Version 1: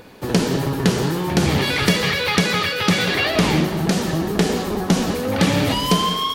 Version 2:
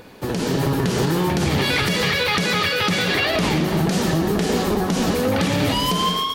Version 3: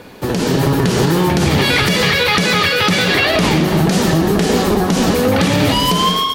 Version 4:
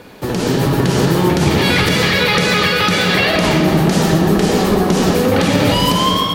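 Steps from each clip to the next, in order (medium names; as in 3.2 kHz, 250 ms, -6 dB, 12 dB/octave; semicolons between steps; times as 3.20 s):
compression, threshold -18 dBFS, peak gain reduction 7 dB; peak limiter -14.5 dBFS, peak gain reduction 7 dB; level rider gain up to 4 dB
wow and flutter 20 cents; trim +6 dB
reverberation RT60 2.9 s, pre-delay 15 ms, DRR 4 dB; trim -1.5 dB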